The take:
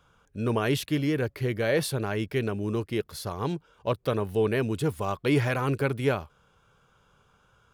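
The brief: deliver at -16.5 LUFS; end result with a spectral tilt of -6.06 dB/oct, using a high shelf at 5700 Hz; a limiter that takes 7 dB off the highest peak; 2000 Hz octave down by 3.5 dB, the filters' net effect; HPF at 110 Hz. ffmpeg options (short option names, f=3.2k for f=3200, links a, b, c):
-af "highpass=110,equalizer=f=2k:t=o:g=-4,highshelf=f=5.7k:g=-4.5,volume=15dB,alimiter=limit=-4.5dB:level=0:latency=1"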